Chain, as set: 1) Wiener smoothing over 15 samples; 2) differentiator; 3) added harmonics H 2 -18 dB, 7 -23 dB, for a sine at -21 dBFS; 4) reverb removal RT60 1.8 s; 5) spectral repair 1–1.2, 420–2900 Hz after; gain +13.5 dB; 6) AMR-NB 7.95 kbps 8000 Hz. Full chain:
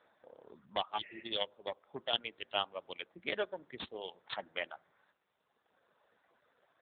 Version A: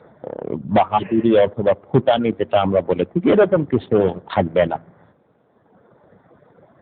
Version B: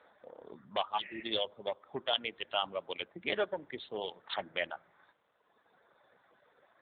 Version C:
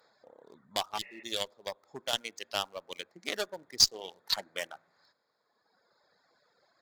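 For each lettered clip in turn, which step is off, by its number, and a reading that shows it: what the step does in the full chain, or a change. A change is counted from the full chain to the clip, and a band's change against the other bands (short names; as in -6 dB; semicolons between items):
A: 2, 4 kHz band -22.0 dB; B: 3, crest factor change -3.5 dB; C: 6, 4 kHz band +6.0 dB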